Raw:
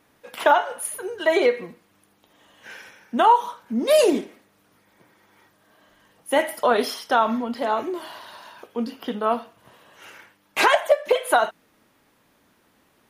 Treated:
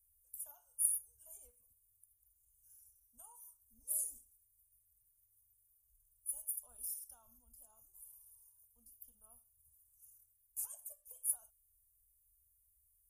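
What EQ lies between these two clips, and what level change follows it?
inverse Chebyshev band-stop filter 160–4,300 Hz, stop band 50 dB
0.0 dB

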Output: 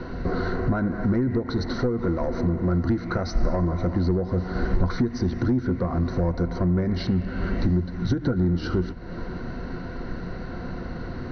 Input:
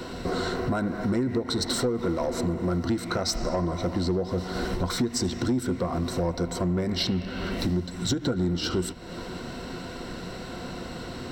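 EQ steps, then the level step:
Chebyshev low-pass with heavy ripple 6,200 Hz, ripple 9 dB
spectral tilt −3 dB per octave
high-shelf EQ 3,600 Hz −7 dB
+5.5 dB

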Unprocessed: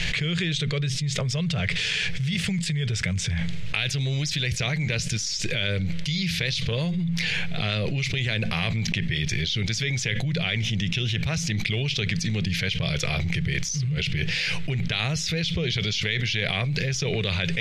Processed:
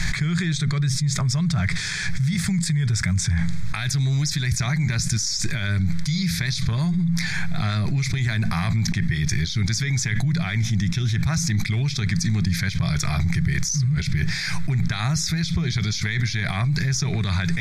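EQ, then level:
high-shelf EQ 8,200 Hz +4 dB
phaser with its sweep stopped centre 1,200 Hz, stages 4
+6.0 dB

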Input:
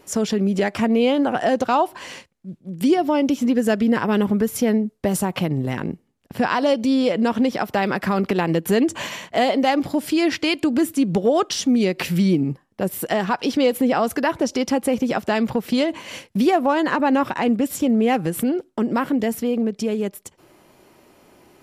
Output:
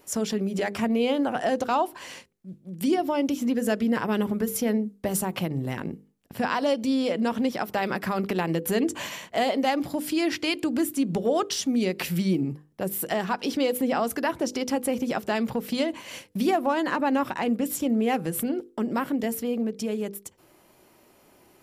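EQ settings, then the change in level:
high-shelf EQ 10,000 Hz +9.5 dB
mains-hum notches 50/100/150/200/250/300/350/400/450/500 Hz
−5.5 dB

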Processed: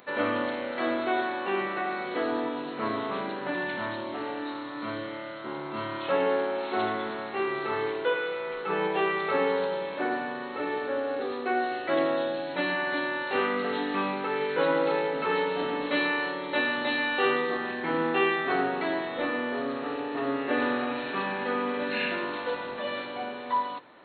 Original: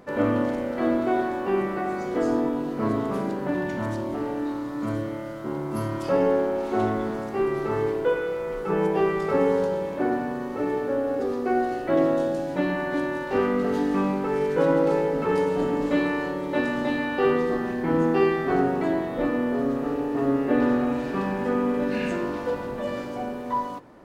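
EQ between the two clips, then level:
linear-phase brick-wall low-pass 4,300 Hz
spectral tilt +4.5 dB per octave
0.0 dB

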